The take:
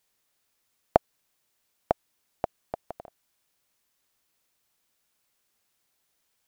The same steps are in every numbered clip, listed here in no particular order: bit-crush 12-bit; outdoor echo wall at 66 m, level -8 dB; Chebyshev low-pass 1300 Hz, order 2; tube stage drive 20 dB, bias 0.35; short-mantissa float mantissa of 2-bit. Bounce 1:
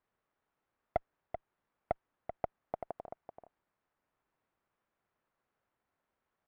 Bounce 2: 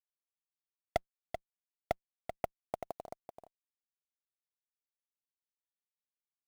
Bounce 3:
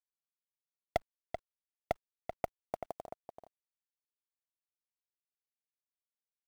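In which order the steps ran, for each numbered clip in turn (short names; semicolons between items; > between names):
tube stage > bit-crush > outdoor echo > short-mantissa float > Chebyshev low-pass; Chebyshev low-pass > bit-crush > tube stage > outdoor echo > short-mantissa float; Chebyshev low-pass > short-mantissa float > tube stage > outdoor echo > bit-crush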